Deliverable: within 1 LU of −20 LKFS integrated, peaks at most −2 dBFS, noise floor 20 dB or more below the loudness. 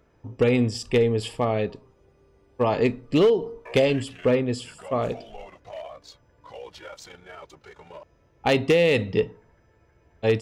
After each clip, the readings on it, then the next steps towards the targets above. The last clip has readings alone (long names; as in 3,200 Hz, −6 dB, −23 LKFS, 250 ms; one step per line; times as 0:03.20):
share of clipped samples 0.3%; peaks flattened at −12.5 dBFS; integrated loudness −23.5 LKFS; sample peak −12.5 dBFS; target loudness −20.0 LKFS
→ clipped peaks rebuilt −12.5 dBFS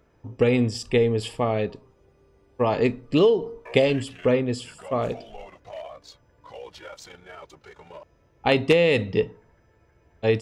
share of clipped samples 0.0%; integrated loudness −23.0 LKFS; sample peak −3.5 dBFS; target loudness −20.0 LKFS
→ level +3 dB
brickwall limiter −2 dBFS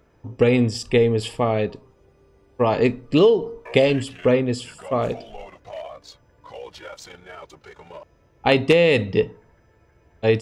integrated loudness −20.5 LKFS; sample peak −2.0 dBFS; background noise floor −59 dBFS